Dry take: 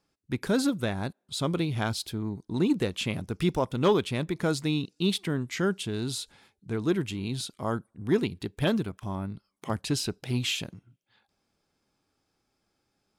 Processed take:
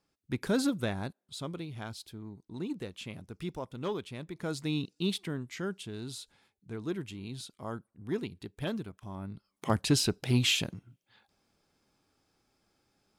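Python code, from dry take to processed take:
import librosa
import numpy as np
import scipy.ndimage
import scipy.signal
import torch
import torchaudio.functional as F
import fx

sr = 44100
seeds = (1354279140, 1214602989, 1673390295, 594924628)

y = fx.gain(x, sr, db=fx.line((0.91, -3.0), (1.59, -12.0), (4.27, -12.0), (4.81, -3.0), (5.61, -9.0), (9.11, -9.0), (9.7, 2.5)))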